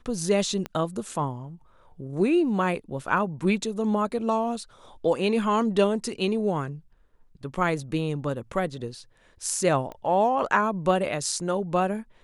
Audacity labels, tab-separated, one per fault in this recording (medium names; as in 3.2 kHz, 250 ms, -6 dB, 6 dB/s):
0.660000	0.660000	pop -18 dBFS
9.920000	9.920000	pop -25 dBFS